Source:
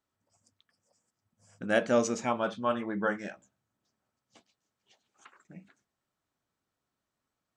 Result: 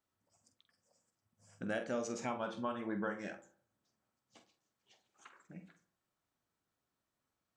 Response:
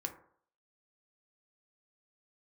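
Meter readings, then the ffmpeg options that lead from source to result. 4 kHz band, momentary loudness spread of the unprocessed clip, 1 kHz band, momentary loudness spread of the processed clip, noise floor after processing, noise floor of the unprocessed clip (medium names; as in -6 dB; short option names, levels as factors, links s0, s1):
-10.0 dB, 13 LU, -9.5 dB, 17 LU, under -85 dBFS, under -85 dBFS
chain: -filter_complex "[0:a]acompressor=threshold=0.0251:ratio=6,asplit=2[s0][s1];[1:a]atrim=start_sample=2205,adelay=46[s2];[s1][s2]afir=irnorm=-1:irlink=0,volume=0.398[s3];[s0][s3]amix=inputs=2:normalize=0,volume=0.708"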